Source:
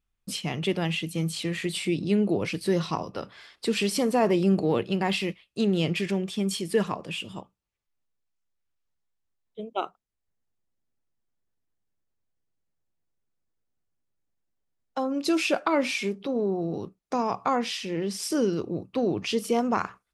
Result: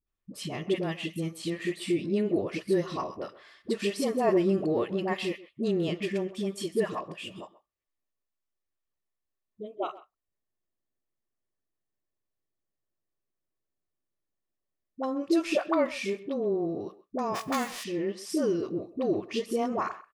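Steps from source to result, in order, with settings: 17.27–17.76 s: formants flattened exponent 0.3; small resonant body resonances 360/600/1100/1800 Hz, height 8 dB, ringing for 20 ms; phase dispersion highs, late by 69 ms, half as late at 510 Hz; speakerphone echo 130 ms, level -17 dB; trim -7.5 dB

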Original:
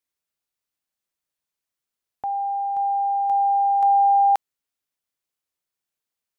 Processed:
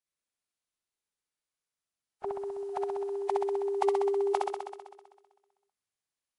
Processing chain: formant-preserving pitch shift -12 st; flutter echo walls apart 11 m, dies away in 1.4 s; trim -7.5 dB

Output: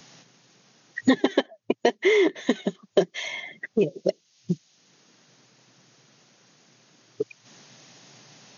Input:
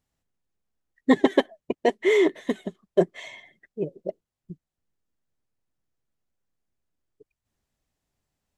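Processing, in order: treble shelf 3 kHz +9.5 dB; FFT band-pass 110–6800 Hz; three bands compressed up and down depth 100%

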